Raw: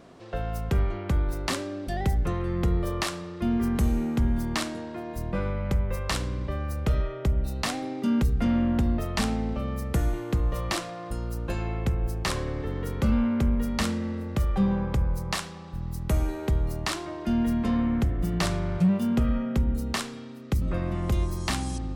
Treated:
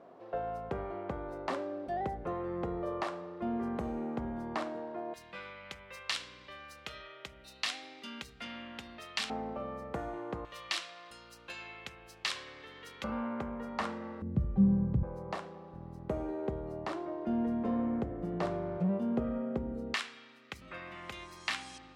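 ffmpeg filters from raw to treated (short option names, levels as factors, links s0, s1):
-af "asetnsamples=n=441:p=0,asendcmd='5.14 bandpass f 3200;9.3 bandpass f 790;10.45 bandpass f 3200;13.04 bandpass f 910;14.22 bandpass f 160;15.03 bandpass f 510;19.94 bandpass f 2300',bandpass=f=670:t=q:w=1.2:csg=0"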